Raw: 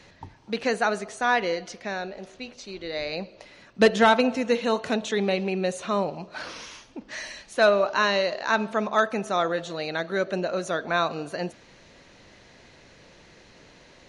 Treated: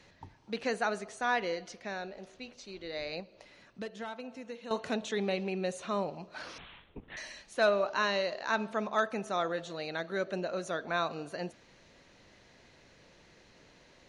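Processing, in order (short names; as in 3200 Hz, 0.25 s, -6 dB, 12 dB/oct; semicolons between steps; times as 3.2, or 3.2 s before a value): 3.2–4.71 compressor 2.5:1, threshold -39 dBFS, peak gain reduction 17 dB; 6.58–7.17 LPC vocoder at 8 kHz whisper; gain -7.5 dB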